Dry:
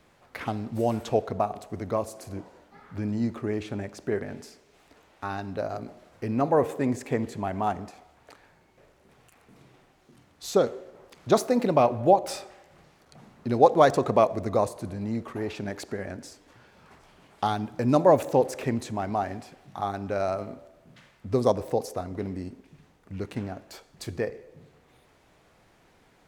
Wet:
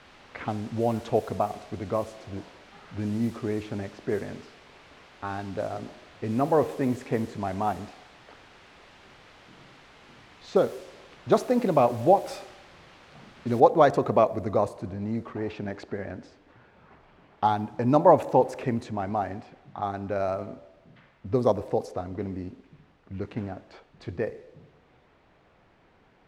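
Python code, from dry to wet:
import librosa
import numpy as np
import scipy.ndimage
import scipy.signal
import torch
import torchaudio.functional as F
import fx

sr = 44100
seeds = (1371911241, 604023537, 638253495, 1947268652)

y = fx.noise_floor_step(x, sr, seeds[0], at_s=13.6, before_db=-44, after_db=-60, tilt_db=0.0)
y = fx.peak_eq(y, sr, hz=880.0, db=7.0, octaves=0.38, at=(17.44, 18.59))
y = fx.env_lowpass(y, sr, base_hz=2900.0, full_db=-21.5)
y = fx.high_shelf(y, sr, hz=4700.0, db=-12.0)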